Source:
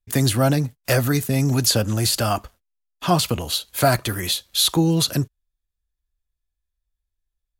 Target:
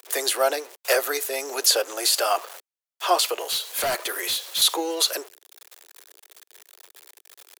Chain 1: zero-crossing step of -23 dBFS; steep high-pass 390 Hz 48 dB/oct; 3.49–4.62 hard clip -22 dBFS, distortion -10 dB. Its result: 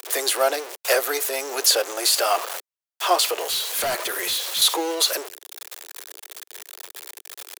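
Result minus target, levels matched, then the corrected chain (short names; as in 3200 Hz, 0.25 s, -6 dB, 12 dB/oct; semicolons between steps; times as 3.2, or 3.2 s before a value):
zero-crossing step: distortion +9 dB
zero-crossing step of -33.5 dBFS; steep high-pass 390 Hz 48 dB/oct; 3.49–4.62 hard clip -22 dBFS, distortion -11 dB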